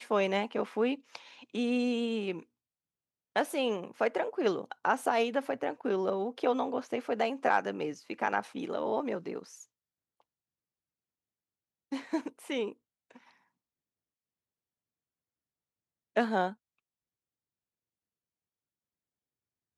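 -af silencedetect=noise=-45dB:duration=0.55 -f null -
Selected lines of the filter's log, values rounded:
silence_start: 2.42
silence_end: 3.36 | silence_duration: 0.93
silence_start: 9.63
silence_end: 11.92 | silence_duration: 2.29
silence_start: 13.17
silence_end: 16.16 | silence_duration: 2.99
silence_start: 16.53
silence_end: 19.78 | silence_duration: 3.24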